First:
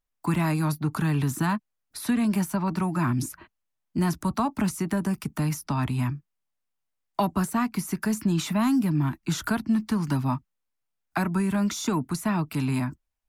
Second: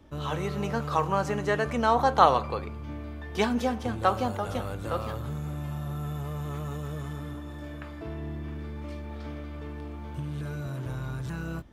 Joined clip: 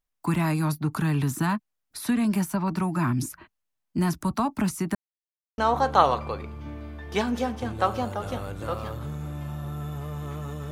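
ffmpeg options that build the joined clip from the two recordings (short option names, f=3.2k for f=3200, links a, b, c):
-filter_complex "[0:a]apad=whole_dur=10.71,atrim=end=10.71,asplit=2[a][b];[a]atrim=end=4.95,asetpts=PTS-STARTPTS,afade=t=out:st=4.946:d=0.004:c=hsin[c];[b]atrim=start=4.95:end=5.58,asetpts=PTS-STARTPTS,volume=0[d];[1:a]atrim=start=1.81:end=6.94,asetpts=PTS-STARTPTS,afade=t=in:d=0.004:c=hsin[e];[c][d][e]concat=n=3:v=0:a=1"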